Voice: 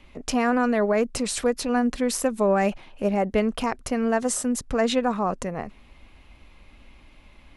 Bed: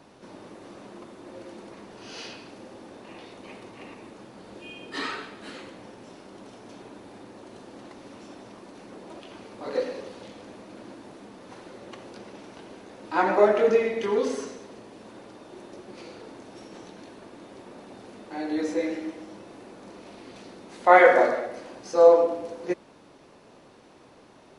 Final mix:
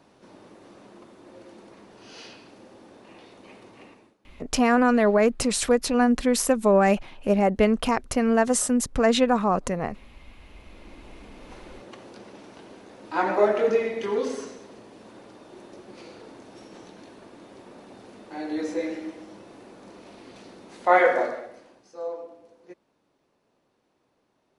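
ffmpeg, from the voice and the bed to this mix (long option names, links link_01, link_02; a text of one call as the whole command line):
ffmpeg -i stem1.wav -i stem2.wav -filter_complex "[0:a]adelay=4250,volume=2.5dB[link_01];[1:a]volume=18.5dB,afade=type=out:start_time=3.81:duration=0.36:silence=0.1,afade=type=in:start_time=10.31:duration=1.14:silence=0.0707946,afade=type=out:start_time=20.73:duration=1.19:silence=0.149624[link_02];[link_01][link_02]amix=inputs=2:normalize=0" out.wav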